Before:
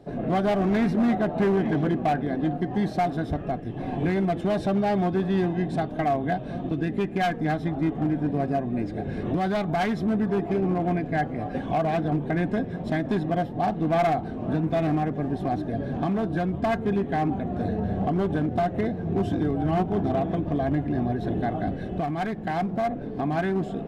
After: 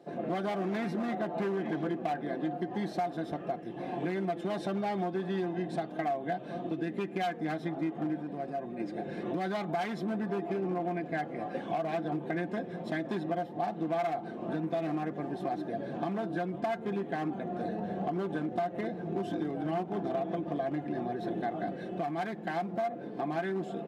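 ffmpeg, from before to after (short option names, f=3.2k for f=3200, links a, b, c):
-filter_complex "[0:a]asettb=1/sr,asplit=3[a][b][c];[a]atrim=end=8.184[d];[b]atrim=start=8.18:end=8.8,asetpts=PTS-STARTPTS,afade=t=in:d=0.004:c=qsin,afade=t=out:st=0.616:d=0.004:c=qsin,acompressor=threshold=-27dB:ratio=6:attack=3.2:release=140:knee=1:detection=peak[e];[c]atrim=start=8.796[f];[d][e]acrossfade=d=0.004:c1=hsin:c2=qsin[g];[g][f]acrossfade=d=0.004:c1=qsin:c2=hsin,highpass=260,aecho=1:1:5.8:0.45,acompressor=threshold=-25dB:ratio=4,volume=-4dB"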